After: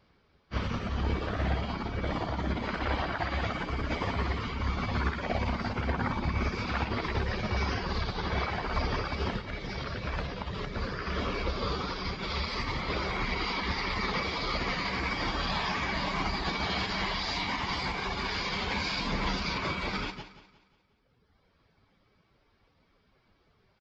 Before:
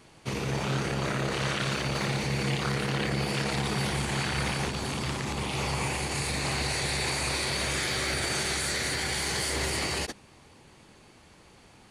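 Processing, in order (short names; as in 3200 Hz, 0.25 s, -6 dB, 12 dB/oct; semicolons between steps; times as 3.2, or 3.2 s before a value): reverb removal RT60 1.1 s; speed mistake 15 ips tape played at 7.5 ips; on a send: feedback echo 0.178 s, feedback 53%, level -10 dB; on the sum: upward expander 1.5:1, over -53 dBFS; gain +2.5 dB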